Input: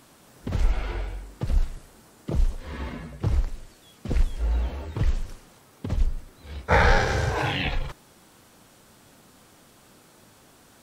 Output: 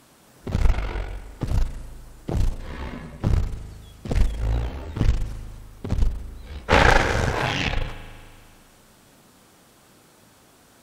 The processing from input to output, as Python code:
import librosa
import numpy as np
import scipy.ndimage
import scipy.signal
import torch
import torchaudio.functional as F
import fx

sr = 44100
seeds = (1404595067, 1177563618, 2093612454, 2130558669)

y = fx.cheby_harmonics(x, sr, harmonics=(4, 8), levels_db=(-8, -22), full_scale_db=-4.0)
y = fx.rev_spring(y, sr, rt60_s=2.1, pass_ms=(38,), chirp_ms=35, drr_db=11.0)